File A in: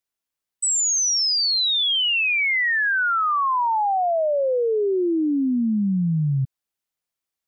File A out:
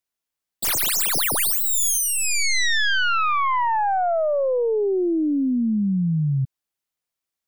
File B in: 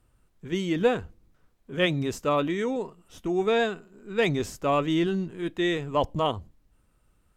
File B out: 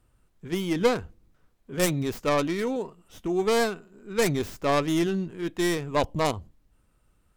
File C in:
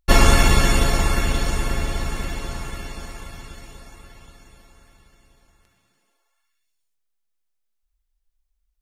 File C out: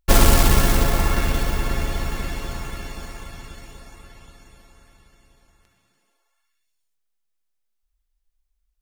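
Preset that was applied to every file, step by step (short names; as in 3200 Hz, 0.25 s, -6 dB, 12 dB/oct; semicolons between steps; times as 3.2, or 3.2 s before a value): tracing distortion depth 0.44 ms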